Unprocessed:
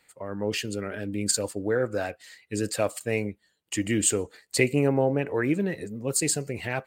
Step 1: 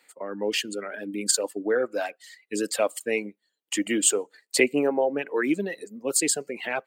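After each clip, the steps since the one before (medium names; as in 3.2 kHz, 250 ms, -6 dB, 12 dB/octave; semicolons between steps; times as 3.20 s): high-pass 230 Hz 24 dB/octave; reverb removal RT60 1.3 s; dynamic bell 3.2 kHz, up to +5 dB, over -54 dBFS, Q 5.5; trim +2.5 dB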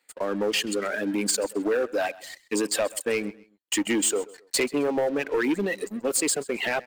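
compression 2.5:1, threshold -29 dBFS, peak gain reduction 10 dB; waveshaping leveller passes 3; feedback delay 132 ms, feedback 29%, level -20.5 dB; trim -3.5 dB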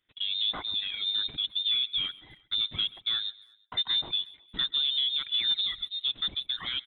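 frequency inversion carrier 3.9 kHz; high-order bell 1.1 kHz -10.5 dB 2.8 oct; speakerphone echo 350 ms, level -28 dB; trim -1.5 dB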